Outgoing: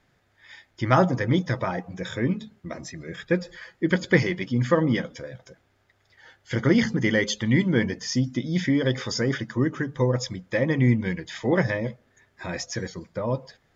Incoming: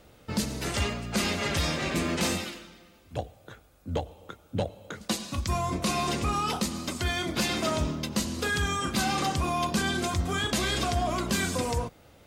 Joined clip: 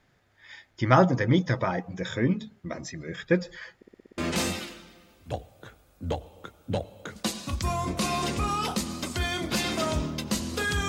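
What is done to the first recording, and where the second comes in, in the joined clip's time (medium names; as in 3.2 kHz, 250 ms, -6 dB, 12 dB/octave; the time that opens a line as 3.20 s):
outgoing
3.76 s: stutter in place 0.06 s, 7 plays
4.18 s: go over to incoming from 2.03 s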